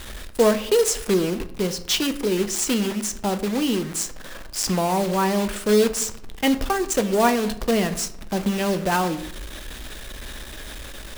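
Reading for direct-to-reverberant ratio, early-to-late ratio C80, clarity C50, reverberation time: 10.0 dB, 16.5 dB, 14.0 dB, 0.70 s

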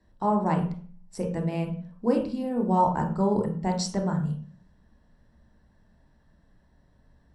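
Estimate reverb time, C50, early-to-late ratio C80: 0.40 s, 7.5 dB, 12.0 dB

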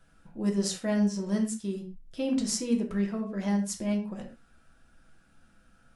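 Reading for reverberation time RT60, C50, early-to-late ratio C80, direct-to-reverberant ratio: no single decay rate, 8.5 dB, 13.0 dB, 1.0 dB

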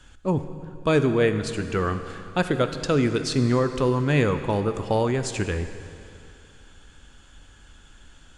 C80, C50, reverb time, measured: 10.5 dB, 10.0 dB, 2.6 s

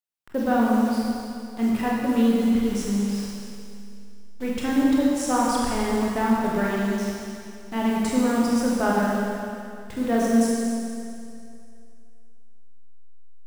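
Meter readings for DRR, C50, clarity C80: -5.5 dB, -2.0 dB, -0.5 dB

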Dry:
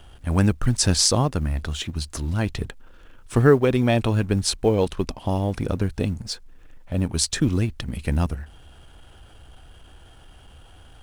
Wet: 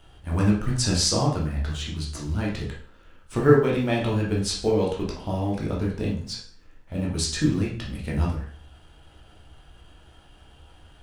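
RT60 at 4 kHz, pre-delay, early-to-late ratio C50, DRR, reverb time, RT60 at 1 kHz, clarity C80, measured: 0.45 s, 6 ms, 5.0 dB, -4.0 dB, 0.50 s, 0.50 s, 10.0 dB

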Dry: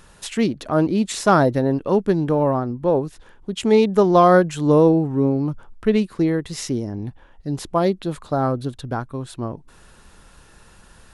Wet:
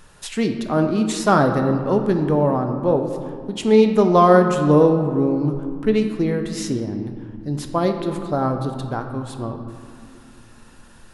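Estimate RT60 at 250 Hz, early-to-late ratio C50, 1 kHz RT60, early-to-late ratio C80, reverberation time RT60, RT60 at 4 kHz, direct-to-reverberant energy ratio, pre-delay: 3.6 s, 7.0 dB, 2.2 s, 8.0 dB, 2.3 s, 1.1 s, 5.0 dB, 4 ms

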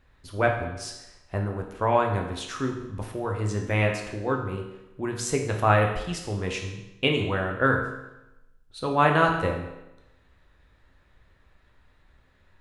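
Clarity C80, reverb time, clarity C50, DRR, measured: 8.0 dB, 0.95 s, 5.5 dB, 1.5 dB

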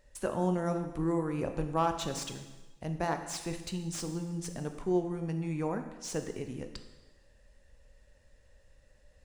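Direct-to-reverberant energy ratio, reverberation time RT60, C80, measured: 6.5 dB, 1.2 s, 10.5 dB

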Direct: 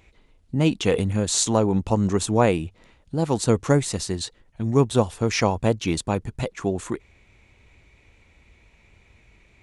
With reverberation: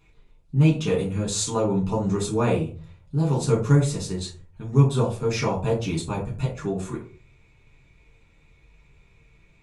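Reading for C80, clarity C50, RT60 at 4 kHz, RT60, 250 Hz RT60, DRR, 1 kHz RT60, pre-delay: 14.5 dB, 9.0 dB, 0.20 s, 0.40 s, 0.50 s, -4.0 dB, 0.35 s, 5 ms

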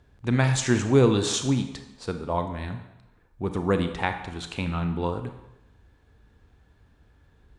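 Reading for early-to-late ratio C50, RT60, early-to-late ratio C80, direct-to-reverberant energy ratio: 8.5 dB, 0.90 s, 11.0 dB, 7.0 dB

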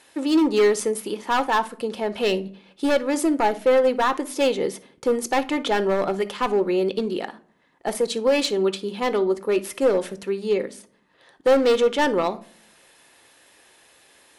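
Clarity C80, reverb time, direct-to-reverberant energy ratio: 24.5 dB, no single decay rate, 10.5 dB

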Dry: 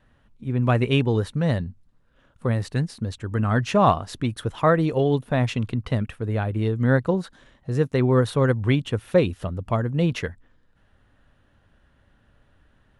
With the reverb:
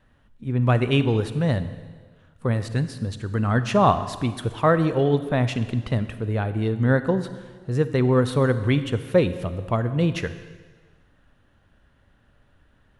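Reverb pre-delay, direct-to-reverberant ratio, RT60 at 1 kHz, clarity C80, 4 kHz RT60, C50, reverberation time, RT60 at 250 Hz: 33 ms, 11.5 dB, 1.5 s, 13.5 dB, 1.4 s, 12.5 dB, 1.5 s, 1.5 s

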